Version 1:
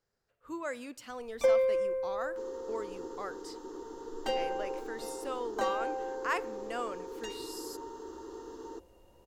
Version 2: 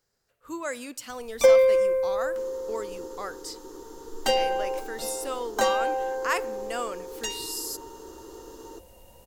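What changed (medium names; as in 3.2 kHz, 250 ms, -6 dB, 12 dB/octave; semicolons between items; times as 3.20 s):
speech +4.0 dB; first sound +8.5 dB; master: add treble shelf 4.8 kHz +12 dB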